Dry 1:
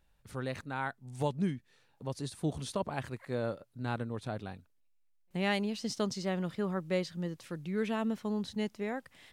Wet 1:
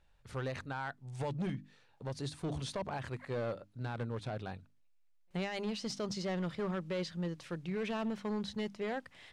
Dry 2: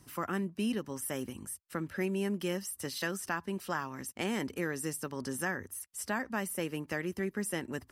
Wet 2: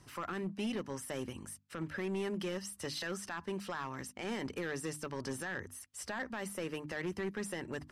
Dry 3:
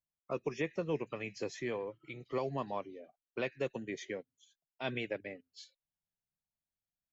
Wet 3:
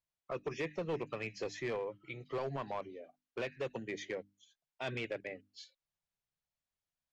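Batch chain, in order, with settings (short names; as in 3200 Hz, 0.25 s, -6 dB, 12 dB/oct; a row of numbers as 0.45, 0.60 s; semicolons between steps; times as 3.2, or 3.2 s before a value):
bell 250 Hz -4.5 dB 1.1 oct; notches 50/100/150/200/250/300 Hz; limiter -28 dBFS; hard clip -34 dBFS; air absorption 58 m; gain +2.5 dB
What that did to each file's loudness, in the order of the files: -3.0, -4.0, -1.5 LU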